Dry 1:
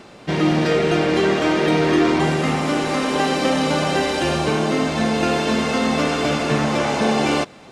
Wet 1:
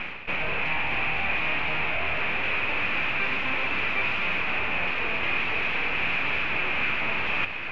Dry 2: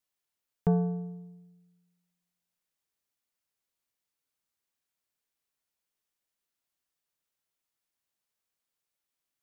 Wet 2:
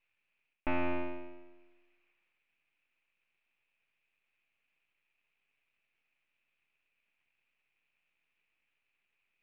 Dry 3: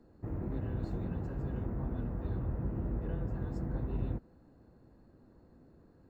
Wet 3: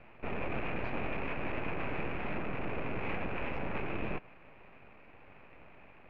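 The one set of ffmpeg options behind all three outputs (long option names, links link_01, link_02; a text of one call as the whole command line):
ffmpeg -i in.wav -filter_complex "[0:a]areverse,acompressor=threshold=-31dB:ratio=6,areverse,asplit=2[link_01][link_02];[link_02]highpass=frequency=720:poles=1,volume=17dB,asoftclip=type=tanh:threshold=-22.5dB[link_03];[link_01][link_03]amix=inputs=2:normalize=0,lowpass=frequency=1200:poles=1,volume=-6dB,aeval=exprs='abs(val(0))':channel_layout=same,lowpass=frequency=2500:width_type=q:width=8.7,volume=3dB" out.wav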